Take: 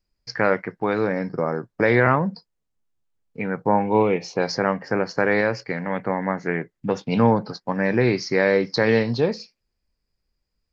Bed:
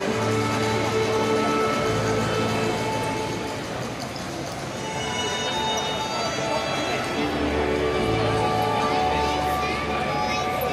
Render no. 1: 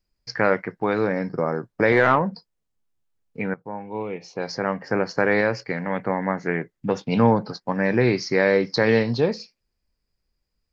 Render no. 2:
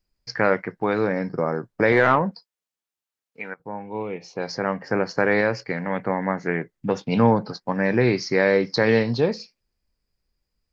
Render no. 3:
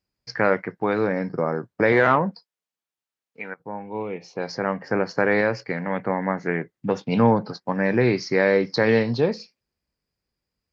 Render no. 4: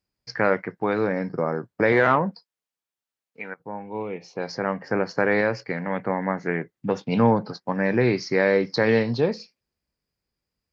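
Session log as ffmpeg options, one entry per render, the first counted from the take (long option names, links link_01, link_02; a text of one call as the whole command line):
ffmpeg -i in.wav -filter_complex "[0:a]asettb=1/sr,asplit=3[link_01][link_02][link_03];[link_01]atrim=end=1.924[link_04];[link_02]atrim=start=1.92:end=2.32,asetpts=PTS-STARTPTS,afade=type=in:duration=0.004:curve=qsin,afade=type=out:start_time=0.396:duration=0.004:curve=qsin,asplit=2[link_05][link_06];[link_06]highpass=frequency=720:poles=1,volume=12dB,asoftclip=type=tanh:threshold=-4.5dB[link_07];[link_05][link_07]amix=inputs=2:normalize=0,lowpass=frequency=1400:poles=1,volume=-6dB[link_08];[link_03]atrim=start=2.316[link_09];[link_04][link_08]acrossfade=duration=0.004:curve1=hsin:curve2=qsin[link_10];[link_10][link_09]acrossfade=duration=0.004:curve1=qsin:curve2=hsin,asplit=2[link_11][link_12];[link_11]atrim=end=3.54,asetpts=PTS-STARTPTS,afade=type=out:start_time=3.536:duration=0.004:curve=hsin:silence=0.177828[link_13];[link_12]atrim=start=3.54,asetpts=PTS-STARTPTS,afade=type=in:duration=1.42:curve=qua:silence=0.177828[link_14];[link_13][link_14]concat=n=2:v=0:a=1" out.wav
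ffmpeg -i in.wav -filter_complex "[0:a]asettb=1/sr,asplit=3[link_01][link_02][link_03];[link_01]atrim=end=2.314[link_04];[link_02]atrim=start=2.31:end=3.6,asetpts=PTS-STARTPTS,afade=type=in:duration=0.004:curve=qsin,afade=type=out:start_time=1.286:duration=0.004:curve=qsin,highpass=frequency=1200:poles=1[link_05];[link_03]atrim=start=3.596[link_06];[link_04][link_05]acrossfade=duration=0.004:curve1=hsin:curve2=qsin[link_07];[link_07][link_06]acrossfade=duration=0.004:curve1=qsin:curve2=hsin" out.wav
ffmpeg -i in.wav -af "highpass=79,highshelf=frequency=5800:gain=-5.5" out.wav
ffmpeg -i in.wav -af "volume=-1dB" out.wav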